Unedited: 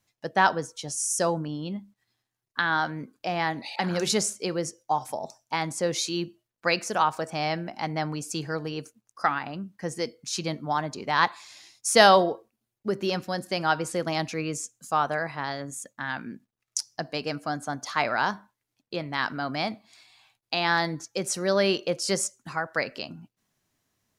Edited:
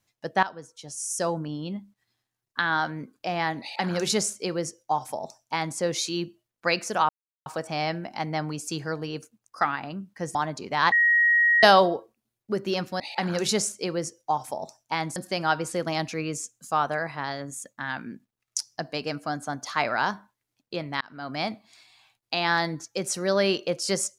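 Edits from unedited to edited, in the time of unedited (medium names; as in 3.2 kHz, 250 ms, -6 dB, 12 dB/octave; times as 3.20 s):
0.43–1.52 s: fade in, from -17 dB
3.61–5.77 s: copy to 13.36 s
7.09 s: insert silence 0.37 s
9.98–10.71 s: delete
11.28–11.99 s: bleep 1.89 kHz -16.5 dBFS
19.21–19.63 s: fade in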